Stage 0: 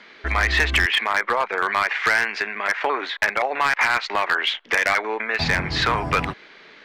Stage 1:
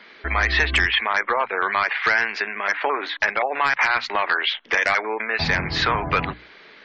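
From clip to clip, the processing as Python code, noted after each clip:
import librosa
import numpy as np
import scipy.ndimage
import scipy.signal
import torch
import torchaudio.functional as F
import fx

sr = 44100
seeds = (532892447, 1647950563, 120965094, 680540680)

y = fx.hum_notches(x, sr, base_hz=60, count=5)
y = fx.spec_gate(y, sr, threshold_db=-30, keep='strong')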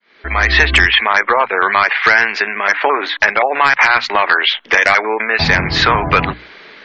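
y = fx.fade_in_head(x, sr, length_s=0.52)
y = y * librosa.db_to_amplitude(8.5)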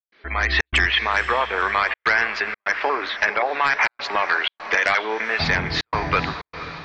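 y = fx.echo_diffused(x, sr, ms=486, feedback_pct=52, wet_db=-12.5)
y = fx.step_gate(y, sr, bpm=124, pattern='.xxxx.xxxxxxxxxx', floor_db=-60.0, edge_ms=4.5)
y = y * librosa.db_to_amplitude(-8.0)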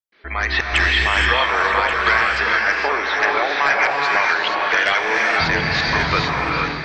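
y = x + 10.0 ** (-10.0 / 20.0) * np.pad(x, (int(1131 * sr / 1000.0), 0))[:len(x)]
y = fx.rev_gated(y, sr, seeds[0], gate_ms=500, shape='rising', drr_db=-1.0)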